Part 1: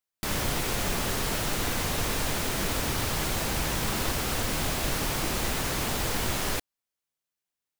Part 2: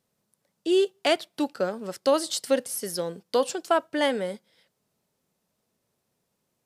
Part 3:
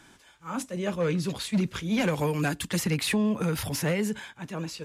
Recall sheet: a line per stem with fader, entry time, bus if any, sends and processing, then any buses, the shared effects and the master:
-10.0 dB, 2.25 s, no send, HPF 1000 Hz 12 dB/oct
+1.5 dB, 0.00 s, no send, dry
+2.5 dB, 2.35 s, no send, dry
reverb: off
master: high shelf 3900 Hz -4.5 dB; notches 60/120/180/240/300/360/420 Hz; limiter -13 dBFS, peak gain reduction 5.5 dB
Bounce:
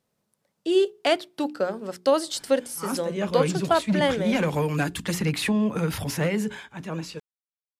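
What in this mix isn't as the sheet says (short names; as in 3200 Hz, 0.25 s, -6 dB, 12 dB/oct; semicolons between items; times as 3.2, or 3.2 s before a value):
stem 1: muted; master: missing limiter -13 dBFS, peak gain reduction 5.5 dB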